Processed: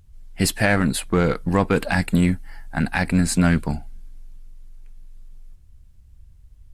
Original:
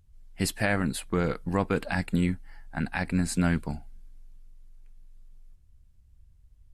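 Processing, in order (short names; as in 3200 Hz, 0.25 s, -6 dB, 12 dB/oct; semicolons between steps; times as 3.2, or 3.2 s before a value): 1.74–3.21 high shelf 9300 Hz +7 dB; in parallel at -6.5 dB: hard clip -26.5 dBFS, distortion -7 dB; on the sum: gain +5.5 dB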